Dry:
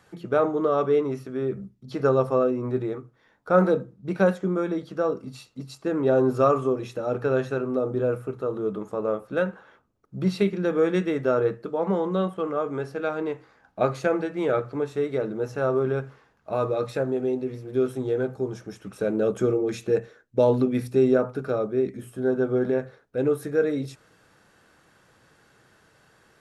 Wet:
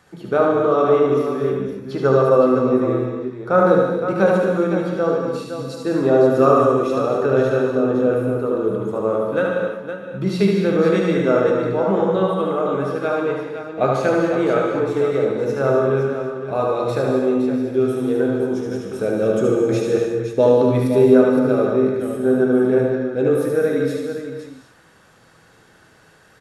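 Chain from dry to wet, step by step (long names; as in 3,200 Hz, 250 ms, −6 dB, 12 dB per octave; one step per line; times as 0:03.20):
on a send: multi-tap delay 74/145/514 ms −4/−12/−8.5 dB
on the sum: reverb whose tail is shaped and stops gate 290 ms flat, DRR 2 dB
level +3 dB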